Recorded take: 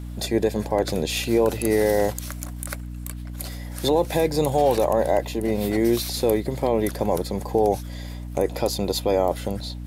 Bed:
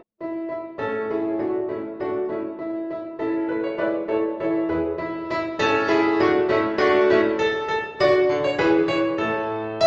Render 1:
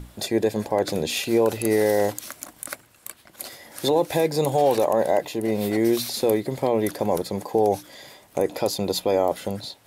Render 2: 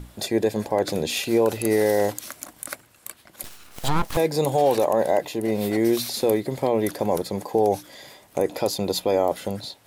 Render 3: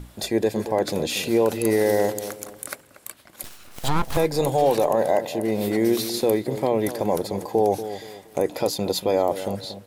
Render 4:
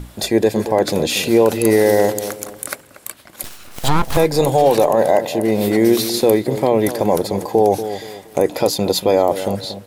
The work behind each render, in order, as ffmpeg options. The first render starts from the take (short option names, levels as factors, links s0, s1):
-af "bandreject=f=60:t=h:w=6,bandreject=f=120:t=h:w=6,bandreject=f=180:t=h:w=6,bandreject=f=240:t=h:w=6,bandreject=f=300:t=h:w=6"
-filter_complex "[0:a]asettb=1/sr,asplit=3[s0][s1][s2];[s0]atrim=end=3.434[s3];[s1]atrim=start=3.43:end=4.17,asetpts=PTS-STARTPTS,afade=t=in:d=0.004:c=qsin,afade=t=out:st=0.736:d=0.004:c=qsin,aeval=exprs='abs(val(0))':c=same[s4];[s2]atrim=start=4.166[s5];[s3][s4]acrossfade=d=0.004:c1=hsin:c2=qsin[s6];[s6][s5]acrossfade=d=0.004:c1=qsin:c2=hsin"
-filter_complex "[0:a]asplit=2[s0][s1];[s1]adelay=235,lowpass=f=1000:p=1,volume=0.282,asplit=2[s2][s3];[s3]adelay=235,lowpass=f=1000:p=1,volume=0.35,asplit=2[s4][s5];[s5]adelay=235,lowpass=f=1000:p=1,volume=0.35,asplit=2[s6][s7];[s7]adelay=235,lowpass=f=1000:p=1,volume=0.35[s8];[s0][s2][s4][s6][s8]amix=inputs=5:normalize=0"
-af "volume=2.24,alimiter=limit=0.708:level=0:latency=1"